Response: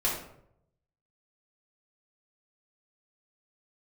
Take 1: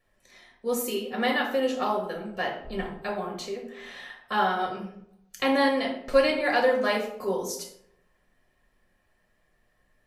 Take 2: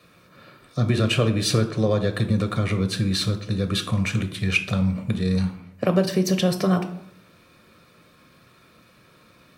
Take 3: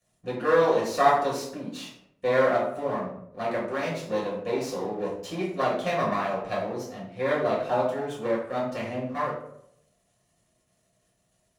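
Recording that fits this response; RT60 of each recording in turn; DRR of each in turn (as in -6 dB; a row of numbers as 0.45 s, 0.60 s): 3; 0.70 s, 0.70 s, 0.70 s; -0.5 dB, 6.5 dB, -5.5 dB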